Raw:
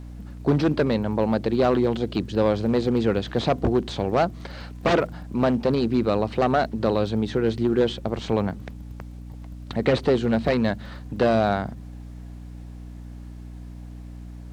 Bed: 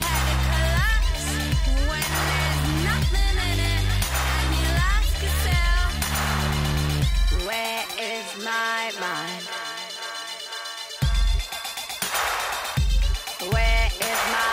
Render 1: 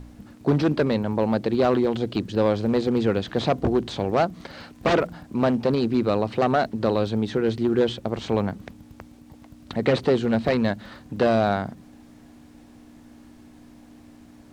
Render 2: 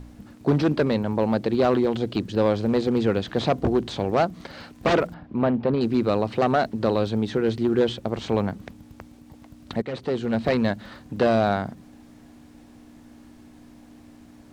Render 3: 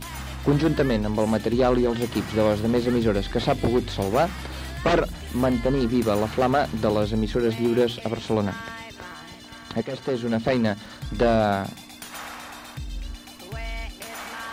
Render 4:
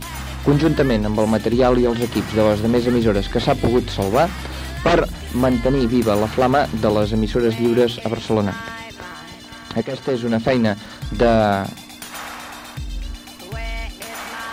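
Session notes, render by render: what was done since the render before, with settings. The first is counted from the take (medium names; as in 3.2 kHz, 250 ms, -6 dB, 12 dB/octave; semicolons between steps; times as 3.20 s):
de-hum 60 Hz, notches 3
5.14–5.81 s: distance through air 330 m; 9.82–10.52 s: fade in, from -16 dB
add bed -12.5 dB
trim +5 dB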